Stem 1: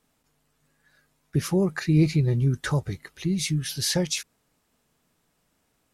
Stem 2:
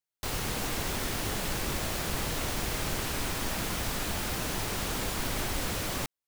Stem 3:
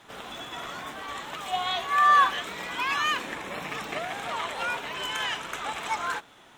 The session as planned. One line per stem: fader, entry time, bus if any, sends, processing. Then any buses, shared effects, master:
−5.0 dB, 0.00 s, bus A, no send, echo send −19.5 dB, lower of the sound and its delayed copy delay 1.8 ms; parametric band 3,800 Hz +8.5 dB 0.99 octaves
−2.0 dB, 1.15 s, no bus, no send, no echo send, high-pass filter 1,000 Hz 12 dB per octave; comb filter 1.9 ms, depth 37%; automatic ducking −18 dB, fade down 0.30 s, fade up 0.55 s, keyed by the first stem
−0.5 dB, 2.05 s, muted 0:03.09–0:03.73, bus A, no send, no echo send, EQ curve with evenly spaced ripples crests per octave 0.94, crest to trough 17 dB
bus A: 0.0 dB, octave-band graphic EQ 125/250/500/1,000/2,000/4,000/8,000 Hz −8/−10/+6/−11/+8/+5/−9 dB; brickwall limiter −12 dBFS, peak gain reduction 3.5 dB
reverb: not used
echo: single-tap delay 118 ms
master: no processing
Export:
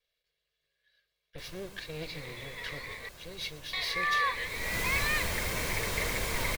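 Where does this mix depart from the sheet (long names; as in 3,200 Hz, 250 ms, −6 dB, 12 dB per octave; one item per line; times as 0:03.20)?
stem 1 −5.0 dB → −14.0 dB
stem 2: missing high-pass filter 1,000 Hz 12 dB per octave
stem 3 −0.5 dB → −9.0 dB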